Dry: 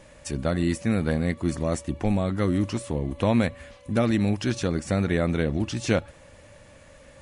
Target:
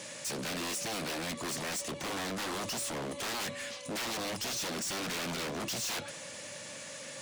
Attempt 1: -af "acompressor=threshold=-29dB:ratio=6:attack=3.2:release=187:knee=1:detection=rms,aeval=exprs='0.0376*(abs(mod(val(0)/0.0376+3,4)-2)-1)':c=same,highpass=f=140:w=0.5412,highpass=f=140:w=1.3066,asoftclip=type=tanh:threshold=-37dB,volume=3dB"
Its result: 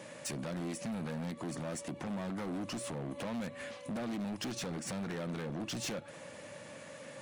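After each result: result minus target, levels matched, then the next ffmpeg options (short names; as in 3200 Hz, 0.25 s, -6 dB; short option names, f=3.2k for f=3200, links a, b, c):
compressor: peak gain reduction +14 dB; 8000 Hz band -5.0 dB
-af "aeval=exprs='0.0376*(abs(mod(val(0)/0.0376+3,4)-2)-1)':c=same,highpass=f=140:w=0.5412,highpass=f=140:w=1.3066,asoftclip=type=tanh:threshold=-37dB,volume=3dB"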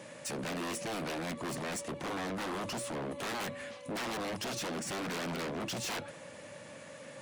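8000 Hz band -4.5 dB
-af "aeval=exprs='0.0376*(abs(mod(val(0)/0.0376+3,4)-2)-1)':c=same,highpass=f=140:w=0.5412,highpass=f=140:w=1.3066,equalizer=f=6.1k:t=o:w=2.4:g=14.5,asoftclip=type=tanh:threshold=-37dB,volume=3dB"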